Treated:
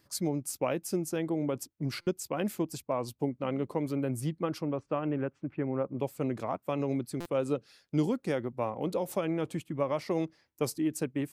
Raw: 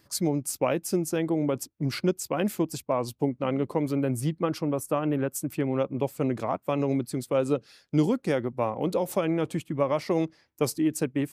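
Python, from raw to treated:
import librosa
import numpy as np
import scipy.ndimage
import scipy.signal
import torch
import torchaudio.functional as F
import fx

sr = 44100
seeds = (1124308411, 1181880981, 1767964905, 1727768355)

y = fx.lowpass(x, sr, hz=fx.line((4.65, 4100.0), (5.97, 1700.0)), slope=24, at=(4.65, 5.97), fade=0.02)
y = fx.buffer_glitch(y, sr, at_s=(2.01, 7.2), block=256, repeats=9)
y = y * librosa.db_to_amplitude(-5.0)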